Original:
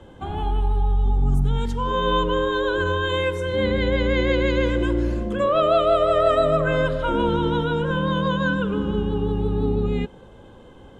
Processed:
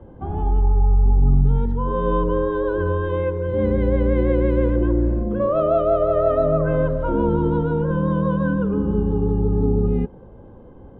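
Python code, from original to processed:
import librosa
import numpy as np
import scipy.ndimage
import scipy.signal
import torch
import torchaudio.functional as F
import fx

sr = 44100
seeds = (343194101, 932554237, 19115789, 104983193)

y = scipy.signal.sosfilt(scipy.signal.butter(2, 1000.0, 'lowpass', fs=sr, output='sos'), x)
y = fx.low_shelf(y, sr, hz=340.0, db=4.5)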